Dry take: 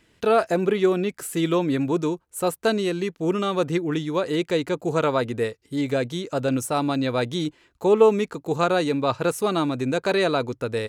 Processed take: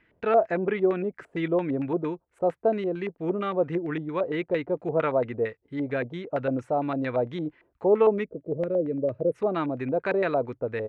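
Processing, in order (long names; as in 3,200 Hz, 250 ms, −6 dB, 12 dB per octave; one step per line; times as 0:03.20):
gain on a spectral selection 0:08.24–0:09.35, 660–8,500 Hz −24 dB
auto-filter low-pass square 4.4 Hz 660–2,000 Hz
level −6 dB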